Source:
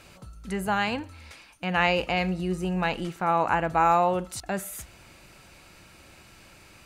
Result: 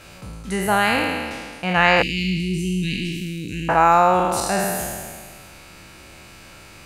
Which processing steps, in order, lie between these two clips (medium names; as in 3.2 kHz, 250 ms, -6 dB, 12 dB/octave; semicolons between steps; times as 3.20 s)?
spectral sustain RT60 1.79 s; 2.02–3.69 s: inverse Chebyshev band-stop 640–1300 Hz, stop band 60 dB; trim +5 dB